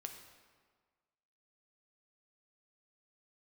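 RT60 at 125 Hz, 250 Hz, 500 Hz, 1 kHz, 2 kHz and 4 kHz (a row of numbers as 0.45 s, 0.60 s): 1.5 s, 1.5 s, 1.6 s, 1.6 s, 1.4 s, 1.1 s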